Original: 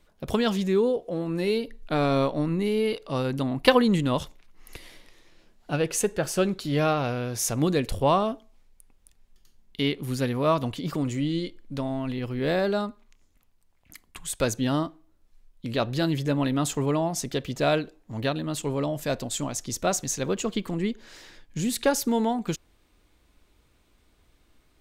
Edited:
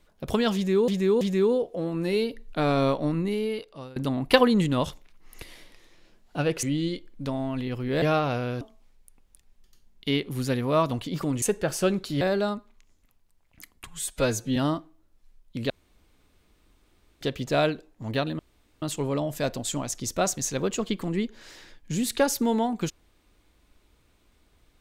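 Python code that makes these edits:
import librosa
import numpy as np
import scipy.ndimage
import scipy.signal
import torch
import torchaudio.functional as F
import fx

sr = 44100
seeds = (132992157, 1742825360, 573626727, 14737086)

y = fx.edit(x, sr, fx.repeat(start_s=0.55, length_s=0.33, count=3),
    fx.fade_out_to(start_s=2.48, length_s=0.82, floor_db=-22.0),
    fx.swap(start_s=5.97, length_s=0.79, other_s=11.14, other_length_s=1.39),
    fx.cut(start_s=7.35, length_s=0.98),
    fx.stretch_span(start_s=14.19, length_s=0.46, factor=1.5),
    fx.room_tone_fill(start_s=15.79, length_s=1.51),
    fx.insert_room_tone(at_s=18.48, length_s=0.43), tone=tone)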